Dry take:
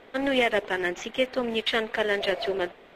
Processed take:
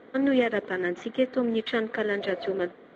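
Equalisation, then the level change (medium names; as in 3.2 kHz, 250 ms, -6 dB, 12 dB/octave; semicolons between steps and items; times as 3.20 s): tilt EQ -4 dB/octave; dynamic bell 830 Hz, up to -3 dB, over -29 dBFS, Q 0.92; cabinet simulation 290–7200 Hz, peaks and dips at 390 Hz -6 dB, 620 Hz -7 dB, 870 Hz -9 dB, 2.6 kHz -10 dB, 5.2 kHz -9 dB; +2.5 dB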